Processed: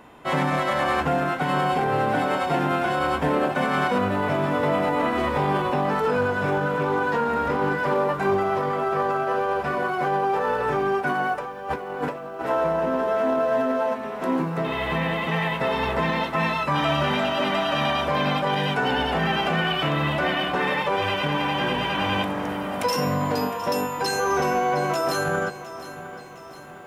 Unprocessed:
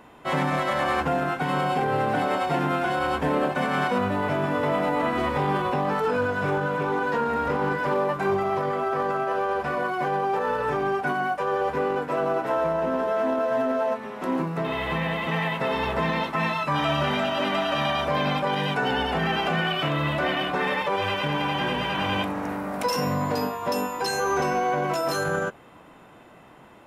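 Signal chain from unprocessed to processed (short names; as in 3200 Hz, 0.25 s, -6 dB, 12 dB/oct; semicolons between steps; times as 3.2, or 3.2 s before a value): 11.38–12.41 negative-ratio compressor -31 dBFS, ratio -0.5; lo-fi delay 0.71 s, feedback 55%, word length 9-bit, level -14.5 dB; gain +1.5 dB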